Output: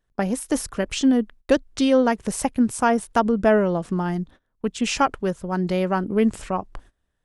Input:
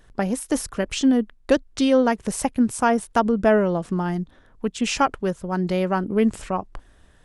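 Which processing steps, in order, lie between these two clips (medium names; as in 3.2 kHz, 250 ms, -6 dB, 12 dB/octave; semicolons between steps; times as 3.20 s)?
gate -42 dBFS, range -21 dB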